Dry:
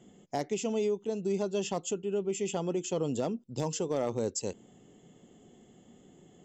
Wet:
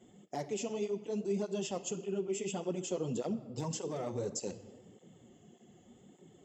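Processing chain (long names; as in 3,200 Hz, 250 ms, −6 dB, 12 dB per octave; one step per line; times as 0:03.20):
brickwall limiter −25 dBFS, peak gain reduction 3.5 dB
on a send at −10 dB: convolution reverb RT60 1.5 s, pre-delay 6 ms
on the sum: through-zero flanger with one copy inverted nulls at 1.7 Hz, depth 7 ms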